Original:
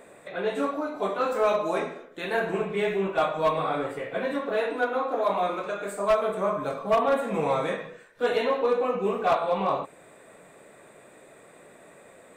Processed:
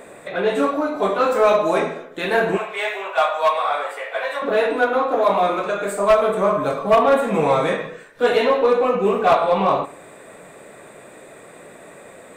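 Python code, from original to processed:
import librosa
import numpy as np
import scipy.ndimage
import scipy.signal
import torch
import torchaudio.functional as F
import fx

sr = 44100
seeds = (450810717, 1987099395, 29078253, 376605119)

p1 = fx.highpass(x, sr, hz=620.0, slope=24, at=(2.57, 4.42))
p2 = 10.0 ** (-29.5 / 20.0) * np.tanh(p1 / 10.0 ** (-29.5 / 20.0))
p3 = p1 + (p2 * 10.0 ** (-11.0 / 20.0))
p4 = fx.echo_filtered(p3, sr, ms=73, feedback_pct=48, hz=2000.0, wet_db=-18.5)
y = p4 * 10.0 ** (7.0 / 20.0)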